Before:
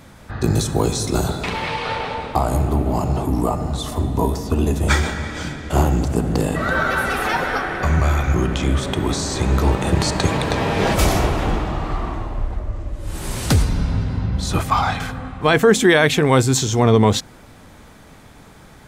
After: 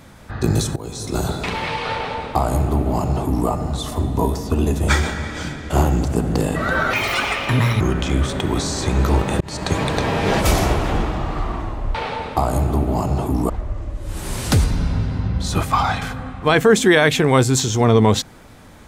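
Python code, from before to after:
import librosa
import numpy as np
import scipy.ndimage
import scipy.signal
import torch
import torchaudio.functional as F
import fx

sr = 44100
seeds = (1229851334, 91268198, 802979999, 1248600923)

y = fx.edit(x, sr, fx.fade_in_from(start_s=0.76, length_s=0.57, floor_db=-21.0),
    fx.duplicate(start_s=1.93, length_s=1.55, to_s=12.48),
    fx.speed_span(start_s=6.93, length_s=1.41, speed=1.61),
    fx.fade_in_span(start_s=9.94, length_s=0.53, curve='qsin'), tone=tone)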